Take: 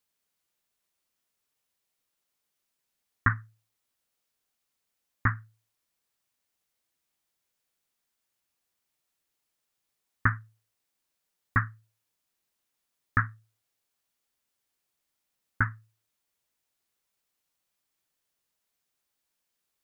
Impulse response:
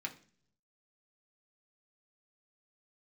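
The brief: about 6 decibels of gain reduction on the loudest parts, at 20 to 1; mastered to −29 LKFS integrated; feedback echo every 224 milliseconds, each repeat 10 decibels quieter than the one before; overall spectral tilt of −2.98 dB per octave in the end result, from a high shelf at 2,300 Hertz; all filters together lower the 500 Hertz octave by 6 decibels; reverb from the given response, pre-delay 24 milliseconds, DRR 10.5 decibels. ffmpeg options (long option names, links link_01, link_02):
-filter_complex "[0:a]equalizer=frequency=500:width_type=o:gain=-8.5,highshelf=frequency=2300:gain=-6,acompressor=threshold=-26dB:ratio=20,aecho=1:1:224|448|672|896:0.316|0.101|0.0324|0.0104,asplit=2[link_01][link_02];[1:a]atrim=start_sample=2205,adelay=24[link_03];[link_02][link_03]afir=irnorm=-1:irlink=0,volume=-11dB[link_04];[link_01][link_04]amix=inputs=2:normalize=0,volume=10dB"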